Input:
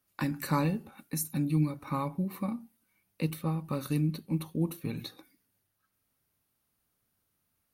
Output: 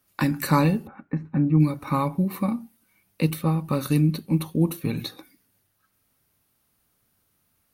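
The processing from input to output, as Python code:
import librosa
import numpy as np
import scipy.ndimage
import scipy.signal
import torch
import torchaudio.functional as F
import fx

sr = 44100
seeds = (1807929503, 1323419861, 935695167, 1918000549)

y = fx.lowpass(x, sr, hz=1800.0, slope=24, at=(0.86, 1.59), fade=0.02)
y = y * 10.0 ** (8.5 / 20.0)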